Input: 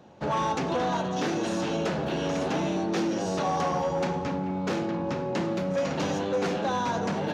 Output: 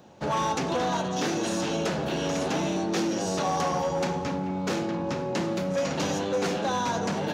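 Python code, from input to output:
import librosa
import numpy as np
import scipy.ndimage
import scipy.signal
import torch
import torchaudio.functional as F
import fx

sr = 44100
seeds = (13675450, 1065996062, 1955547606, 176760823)

y = fx.high_shelf(x, sr, hz=5600.0, db=11.0)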